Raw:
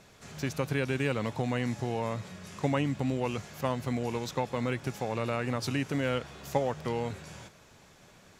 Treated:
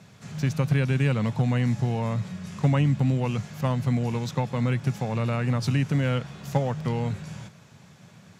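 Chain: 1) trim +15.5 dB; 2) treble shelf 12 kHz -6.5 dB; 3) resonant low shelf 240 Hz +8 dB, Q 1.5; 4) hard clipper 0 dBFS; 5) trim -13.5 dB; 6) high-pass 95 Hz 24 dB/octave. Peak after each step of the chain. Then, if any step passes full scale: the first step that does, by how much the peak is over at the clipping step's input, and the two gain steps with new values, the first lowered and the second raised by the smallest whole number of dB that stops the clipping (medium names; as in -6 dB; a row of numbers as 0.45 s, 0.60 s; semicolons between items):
+2.0 dBFS, +2.0 dBFS, +3.5 dBFS, 0.0 dBFS, -13.5 dBFS, -10.5 dBFS; step 1, 3.5 dB; step 1 +11.5 dB, step 5 -9.5 dB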